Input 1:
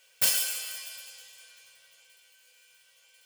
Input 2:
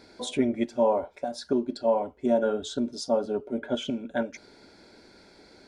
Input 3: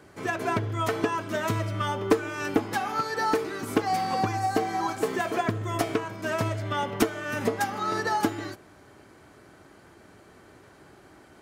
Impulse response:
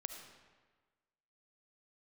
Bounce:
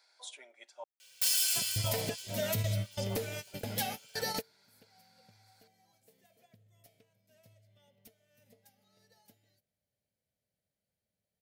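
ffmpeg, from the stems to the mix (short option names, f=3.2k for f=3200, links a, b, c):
-filter_complex "[0:a]adelay=1000,volume=-5.5dB[a];[1:a]highpass=f=730:w=0.5412,highpass=f=730:w=1.3066,volume=-14.5dB,asplit=3[b][c][d];[b]atrim=end=0.84,asetpts=PTS-STARTPTS,afade=t=out:st=0.836:d=0.004:c=hsin[e];[c]atrim=start=0.84:end=1.54,asetpts=PTS-STARTPTS,volume=0[f];[d]atrim=start=1.54,asetpts=PTS-STARTPTS,afade=t=in:d=0.004:c=hsin[g];[e][f][g]concat=n=3:v=0:a=1,asplit=2[h][i];[2:a]firequalizer=gain_entry='entry(210,0);entry(330,-20);entry(520,1);entry(1100,-23);entry(2000,-8);entry(7000,-8);entry(13000,6)':delay=0.05:min_phase=1,adelay=1050,volume=0.5dB[j];[i]apad=whole_len=554292[k];[j][k]sidechaingate=range=-34dB:threshold=-59dB:ratio=16:detection=peak[l];[a][l]amix=inputs=2:normalize=0,equalizer=f=4.3k:t=o:w=1.6:g=7,alimiter=level_in=0.5dB:limit=-24dB:level=0:latency=1:release=54,volume=-0.5dB,volume=0dB[m];[h][m]amix=inputs=2:normalize=0,highshelf=f=4k:g=8"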